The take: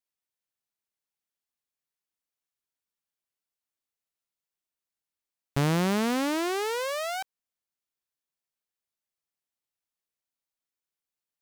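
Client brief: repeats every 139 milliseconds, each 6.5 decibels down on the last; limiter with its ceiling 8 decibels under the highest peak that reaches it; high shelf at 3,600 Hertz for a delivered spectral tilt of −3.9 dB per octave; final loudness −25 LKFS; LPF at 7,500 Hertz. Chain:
low-pass filter 7,500 Hz
high-shelf EQ 3,600 Hz +7 dB
brickwall limiter −21.5 dBFS
repeating echo 139 ms, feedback 47%, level −6.5 dB
level +5.5 dB

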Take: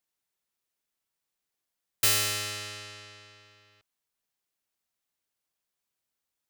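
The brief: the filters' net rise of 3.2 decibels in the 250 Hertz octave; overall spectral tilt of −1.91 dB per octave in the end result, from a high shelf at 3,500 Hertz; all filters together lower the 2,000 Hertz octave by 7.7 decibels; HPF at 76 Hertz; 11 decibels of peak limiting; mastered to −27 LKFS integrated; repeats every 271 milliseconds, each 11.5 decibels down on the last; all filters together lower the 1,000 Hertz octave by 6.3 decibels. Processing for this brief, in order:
high-pass filter 76 Hz
parametric band 250 Hz +5 dB
parametric band 1,000 Hz −5 dB
parametric band 2,000 Hz −7.5 dB
high-shelf EQ 3,500 Hz −4 dB
brickwall limiter −26 dBFS
repeating echo 271 ms, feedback 27%, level −11.5 dB
level +10 dB

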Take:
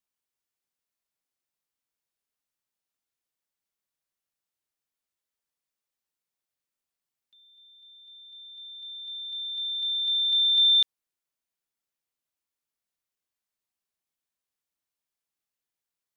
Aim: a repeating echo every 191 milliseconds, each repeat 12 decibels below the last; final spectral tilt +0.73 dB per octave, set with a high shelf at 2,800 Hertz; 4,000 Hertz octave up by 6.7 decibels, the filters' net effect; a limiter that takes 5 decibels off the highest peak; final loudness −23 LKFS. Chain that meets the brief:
high-shelf EQ 2,800 Hz +3.5 dB
parametric band 4,000 Hz +5 dB
brickwall limiter −14.5 dBFS
repeating echo 191 ms, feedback 25%, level −12 dB
level −6 dB

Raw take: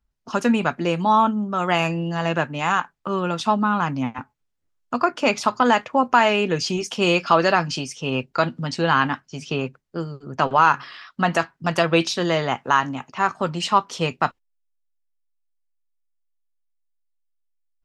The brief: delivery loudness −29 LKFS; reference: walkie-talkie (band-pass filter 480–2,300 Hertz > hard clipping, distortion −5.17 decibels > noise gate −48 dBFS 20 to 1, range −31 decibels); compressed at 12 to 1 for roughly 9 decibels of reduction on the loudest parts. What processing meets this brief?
downward compressor 12 to 1, threshold −20 dBFS
band-pass filter 480–2,300 Hz
hard clipping −28.5 dBFS
noise gate −48 dBFS 20 to 1, range −31 dB
level +5.5 dB

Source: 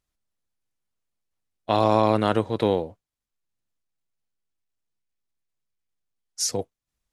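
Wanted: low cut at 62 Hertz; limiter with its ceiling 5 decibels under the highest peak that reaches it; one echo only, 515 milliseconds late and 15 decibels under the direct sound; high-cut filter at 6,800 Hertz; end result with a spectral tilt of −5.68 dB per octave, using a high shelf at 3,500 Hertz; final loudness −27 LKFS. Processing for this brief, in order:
high-pass filter 62 Hz
low-pass filter 6,800 Hz
high-shelf EQ 3,500 Hz −6.5 dB
brickwall limiter −12.5 dBFS
single-tap delay 515 ms −15 dB
level −0.5 dB

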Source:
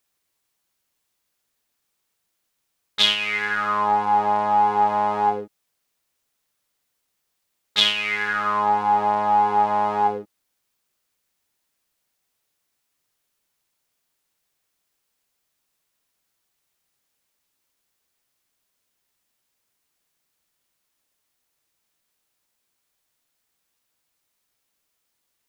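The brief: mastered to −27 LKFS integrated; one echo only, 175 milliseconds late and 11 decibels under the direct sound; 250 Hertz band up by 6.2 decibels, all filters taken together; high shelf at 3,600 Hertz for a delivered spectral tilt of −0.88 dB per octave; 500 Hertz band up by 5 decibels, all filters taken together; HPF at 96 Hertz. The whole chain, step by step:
high-pass filter 96 Hz
parametric band 250 Hz +7.5 dB
parametric band 500 Hz +4.5 dB
high-shelf EQ 3,600 Hz −6 dB
single-tap delay 175 ms −11 dB
level −8 dB

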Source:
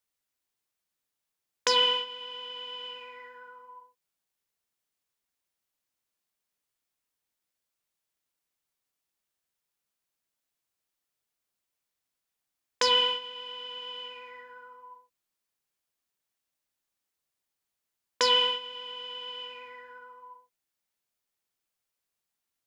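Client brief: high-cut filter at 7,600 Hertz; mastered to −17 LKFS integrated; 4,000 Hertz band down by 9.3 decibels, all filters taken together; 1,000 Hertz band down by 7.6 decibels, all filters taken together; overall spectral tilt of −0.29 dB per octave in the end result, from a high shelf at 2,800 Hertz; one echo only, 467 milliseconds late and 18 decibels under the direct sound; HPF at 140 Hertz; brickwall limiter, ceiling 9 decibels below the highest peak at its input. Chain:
high-pass filter 140 Hz
low-pass filter 7,600 Hz
parametric band 1,000 Hz −6.5 dB
high-shelf EQ 2,800 Hz −6.5 dB
parametric band 4,000 Hz −8.5 dB
brickwall limiter −26.5 dBFS
single-tap delay 467 ms −18 dB
level +22.5 dB

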